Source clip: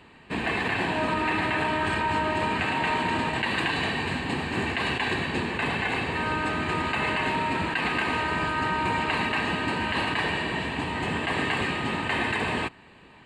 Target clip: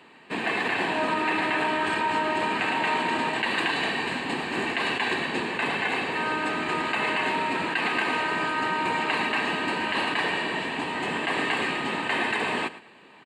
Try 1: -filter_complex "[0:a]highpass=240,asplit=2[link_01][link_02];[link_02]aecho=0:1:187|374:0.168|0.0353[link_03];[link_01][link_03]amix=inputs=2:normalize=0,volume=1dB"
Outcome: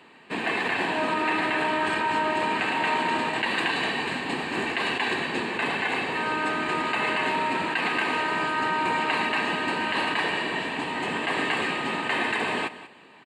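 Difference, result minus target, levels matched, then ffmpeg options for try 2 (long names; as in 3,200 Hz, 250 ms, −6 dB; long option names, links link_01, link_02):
echo 77 ms late
-filter_complex "[0:a]highpass=240,asplit=2[link_01][link_02];[link_02]aecho=0:1:110|220:0.168|0.0353[link_03];[link_01][link_03]amix=inputs=2:normalize=0,volume=1dB"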